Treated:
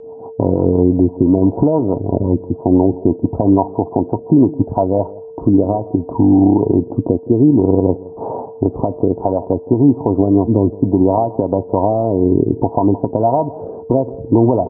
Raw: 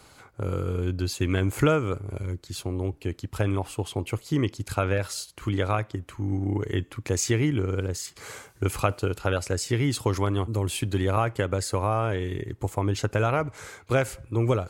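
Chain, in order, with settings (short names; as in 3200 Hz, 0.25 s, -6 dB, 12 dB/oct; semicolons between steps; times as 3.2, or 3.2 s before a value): expander -45 dBFS; HPF 210 Hz 6 dB/oct; tilt shelf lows -4 dB, about 670 Hz; compressor 8:1, threshold -32 dBFS, peak gain reduction 15 dB; rippled Chebyshev low-pass 980 Hz, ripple 9 dB; whine 450 Hz -62 dBFS; rotary speaker horn 6 Hz, later 0.6 Hz, at 4.67; echo 0.167 s -20.5 dB; maximiser +34 dB; gain -1 dB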